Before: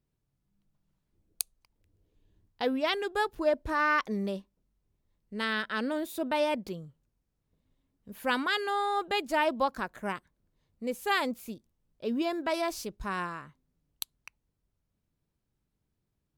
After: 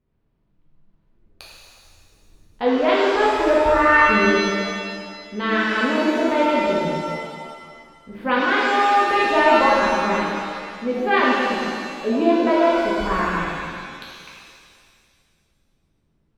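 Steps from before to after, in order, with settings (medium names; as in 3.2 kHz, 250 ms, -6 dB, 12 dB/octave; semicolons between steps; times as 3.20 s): distance through air 370 m; hum notches 50/100/150 Hz; pitch-shifted reverb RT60 2 s, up +7 st, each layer -8 dB, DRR -6.5 dB; trim +6.5 dB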